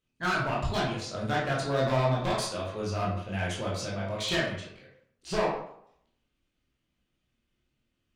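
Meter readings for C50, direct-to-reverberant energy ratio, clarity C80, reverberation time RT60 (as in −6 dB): 2.5 dB, −5.5 dB, 6.0 dB, 0.70 s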